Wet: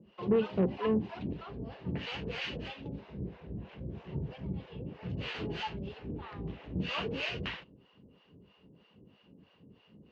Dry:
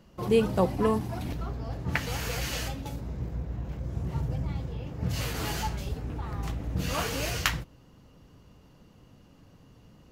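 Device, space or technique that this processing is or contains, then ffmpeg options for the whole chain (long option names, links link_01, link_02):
guitar amplifier with harmonic tremolo: -filter_complex "[0:a]acrossover=split=590[link_01][link_02];[link_01]aeval=exprs='val(0)*(1-1/2+1/2*cos(2*PI*3.1*n/s))':channel_layout=same[link_03];[link_02]aeval=exprs='val(0)*(1-1/2-1/2*cos(2*PI*3.1*n/s))':channel_layout=same[link_04];[link_03][link_04]amix=inputs=2:normalize=0,asoftclip=type=tanh:threshold=-24.5dB,highpass=95,equalizer=frequency=120:width_type=q:width=4:gain=-4,equalizer=frequency=200:width_type=q:width=4:gain=6,equalizer=frequency=400:width_type=q:width=4:gain=7,equalizer=frequency=740:width_type=q:width=4:gain=-3,equalizer=frequency=1300:width_type=q:width=4:gain=-4,equalizer=frequency=2800:width_type=q:width=4:gain=7,lowpass=frequency=3800:width=0.5412,lowpass=frequency=3800:width=1.3066"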